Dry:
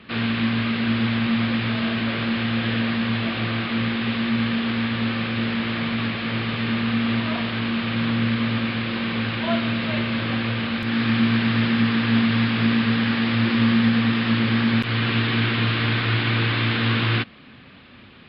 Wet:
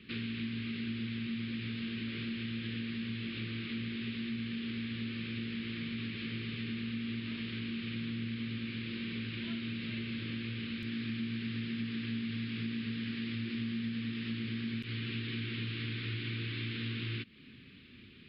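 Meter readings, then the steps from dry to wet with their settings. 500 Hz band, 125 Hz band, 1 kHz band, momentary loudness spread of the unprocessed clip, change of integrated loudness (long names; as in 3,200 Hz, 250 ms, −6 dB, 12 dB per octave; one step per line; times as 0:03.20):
−19.5 dB, −15.5 dB, −28.5 dB, 5 LU, −16.0 dB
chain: drawn EQ curve 400 Hz 0 dB, 710 Hz −27 dB, 1,300 Hz −11 dB, 2,300 Hz 0 dB
downward compressor 3 to 1, threshold −30 dBFS, peak gain reduction 11.5 dB
level −7.5 dB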